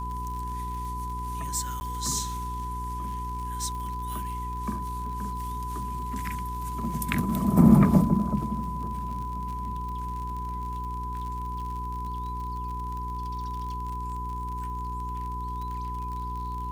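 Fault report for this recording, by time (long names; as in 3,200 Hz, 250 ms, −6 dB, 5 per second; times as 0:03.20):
surface crackle 55 per second −35 dBFS
mains hum 60 Hz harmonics 7 −35 dBFS
whistle 1,000 Hz −33 dBFS
0:01.80–0:01.81: drop-out 10 ms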